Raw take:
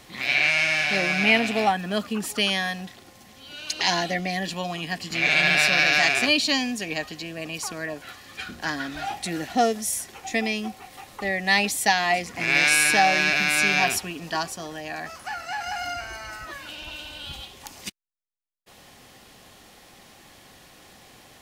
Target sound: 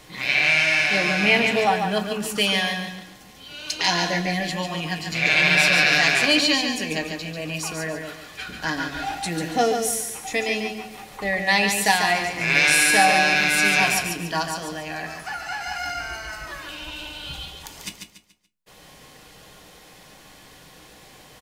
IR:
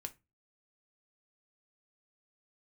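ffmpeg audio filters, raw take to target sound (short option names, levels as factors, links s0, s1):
-filter_complex "[0:a]aecho=1:1:143|286|429|572:0.501|0.17|0.0579|0.0197[s0];[1:a]atrim=start_sample=2205[s1];[s0][s1]afir=irnorm=-1:irlink=0,volume=1.78"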